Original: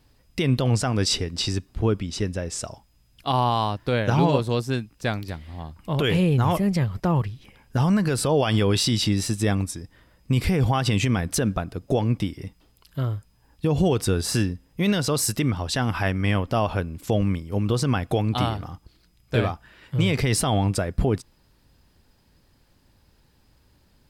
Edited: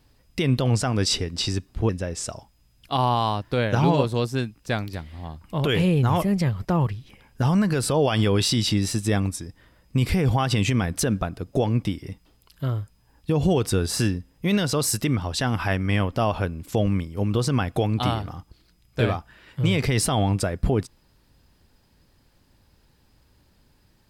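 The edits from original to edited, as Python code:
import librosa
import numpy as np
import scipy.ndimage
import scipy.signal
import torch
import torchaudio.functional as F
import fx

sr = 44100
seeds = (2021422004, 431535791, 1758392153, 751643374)

y = fx.edit(x, sr, fx.cut(start_s=1.89, length_s=0.35), tone=tone)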